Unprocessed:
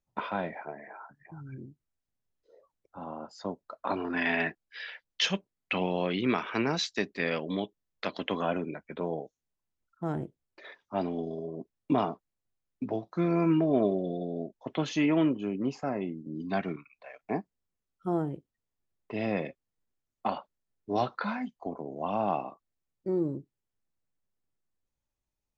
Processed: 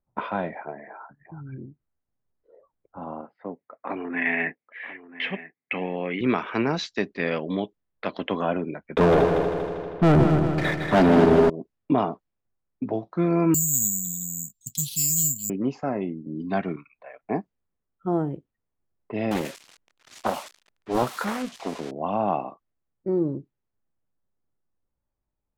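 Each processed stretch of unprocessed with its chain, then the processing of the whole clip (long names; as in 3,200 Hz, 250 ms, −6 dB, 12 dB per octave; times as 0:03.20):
0:03.21–0:06.21: loudspeaker in its box 180–2,600 Hz, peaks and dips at 200 Hz −5 dB, 350 Hz −5 dB, 620 Hz −7 dB, 960 Hz −7 dB, 1,400 Hz −7 dB, 2,100 Hz +9 dB + single-tap delay 988 ms −15.5 dB
0:08.96–0:11.50: leveller curve on the samples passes 5 + echo machine with several playback heads 79 ms, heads second and third, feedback 60%, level −7.5 dB
0:13.54–0:15.50: bad sample-rate conversion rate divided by 6×, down none, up zero stuff + inverse Chebyshev band-stop filter 420–1,400 Hz, stop band 60 dB
0:19.31–0:21.91: spike at every zero crossing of −24 dBFS + highs frequency-modulated by the lows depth 0.62 ms
whole clip: low-pass that shuts in the quiet parts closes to 1,600 Hz, open at −27.5 dBFS; high-shelf EQ 3,600 Hz −10.5 dB; level +5 dB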